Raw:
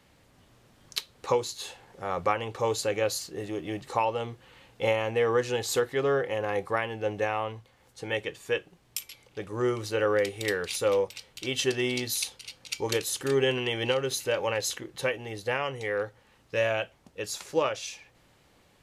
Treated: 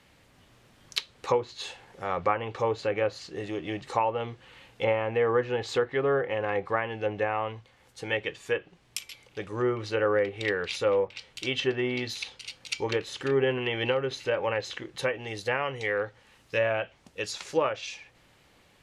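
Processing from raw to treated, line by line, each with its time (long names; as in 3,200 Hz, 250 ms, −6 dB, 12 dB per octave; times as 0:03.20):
0:15.15–0:17.81: high-shelf EQ 4,800 Hz +6.5 dB
whole clip: treble cut that deepens with the level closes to 1,700 Hz, closed at −23.5 dBFS; parametric band 2,400 Hz +4 dB 1.7 octaves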